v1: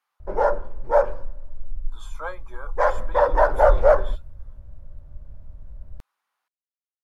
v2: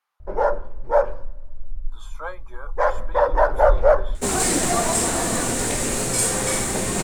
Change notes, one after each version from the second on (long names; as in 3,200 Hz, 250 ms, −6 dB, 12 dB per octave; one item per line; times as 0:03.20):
second sound: unmuted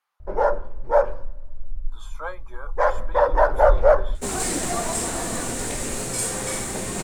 second sound −5.0 dB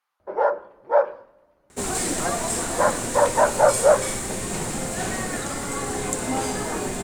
first sound: add band-pass filter 330–4,000 Hz
second sound: entry −2.45 s